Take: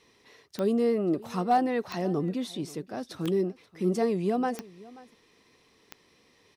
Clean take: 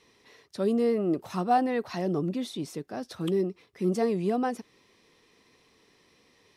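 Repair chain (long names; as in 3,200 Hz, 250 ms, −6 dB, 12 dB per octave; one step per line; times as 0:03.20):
clipped peaks rebuilt −15 dBFS
click removal
echo removal 533 ms −21 dB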